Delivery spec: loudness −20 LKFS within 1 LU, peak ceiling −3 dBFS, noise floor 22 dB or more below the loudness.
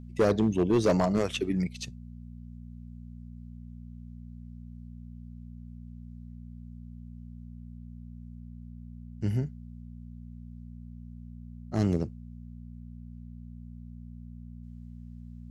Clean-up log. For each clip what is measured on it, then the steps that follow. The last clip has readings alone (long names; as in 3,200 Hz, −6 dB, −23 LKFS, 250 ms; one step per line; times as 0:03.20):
share of clipped samples 0.4%; peaks flattened at −17.5 dBFS; mains hum 60 Hz; hum harmonics up to 240 Hz; level of the hum −41 dBFS; integrated loudness −28.5 LKFS; sample peak −17.5 dBFS; target loudness −20.0 LKFS
→ clipped peaks rebuilt −17.5 dBFS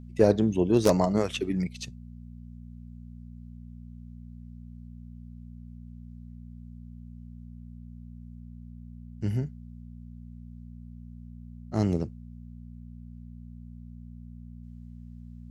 share of clipped samples 0.0%; mains hum 60 Hz; hum harmonics up to 240 Hz; level of the hum −41 dBFS
→ hum removal 60 Hz, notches 4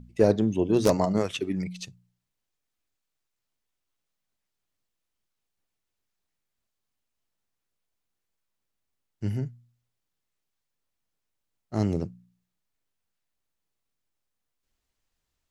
mains hum none found; integrated loudness −26.5 LKFS; sample peak −8.0 dBFS; target loudness −20.0 LKFS
→ level +6.5 dB
brickwall limiter −3 dBFS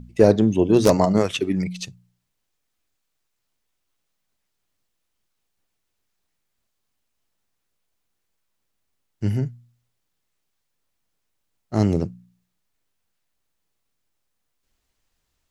integrated loudness −20.5 LKFS; sample peak −3.0 dBFS; background noise floor −76 dBFS